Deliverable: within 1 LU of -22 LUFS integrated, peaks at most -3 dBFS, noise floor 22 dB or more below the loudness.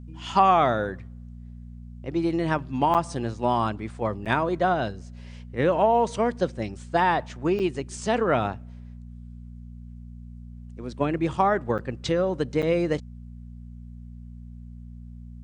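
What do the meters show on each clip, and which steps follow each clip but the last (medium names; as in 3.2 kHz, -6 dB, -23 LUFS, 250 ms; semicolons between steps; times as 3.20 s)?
dropouts 5; longest dropout 7.6 ms; hum 60 Hz; highest harmonic 240 Hz; hum level -39 dBFS; loudness -25.0 LUFS; peak level -7.0 dBFS; loudness target -22.0 LUFS
-> interpolate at 2.94/4.25/7.59/11.78/12.62 s, 7.6 ms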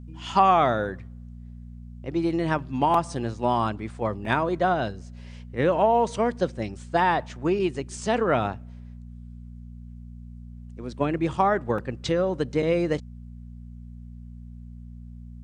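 dropouts 0; hum 60 Hz; highest harmonic 240 Hz; hum level -39 dBFS
-> de-hum 60 Hz, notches 4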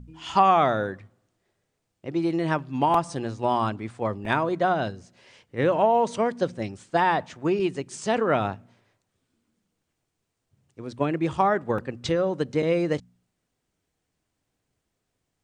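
hum not found; loudness -25.0 LUFS; peak level -7.5 dBFS; loudness target -22.0 LUFS
-> trim +3 dB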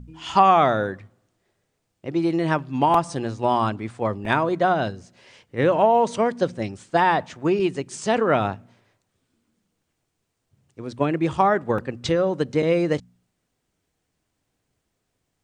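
loudness -22.0 LUFS; peak level -4.5 dBFS; noise floor -76 dBFS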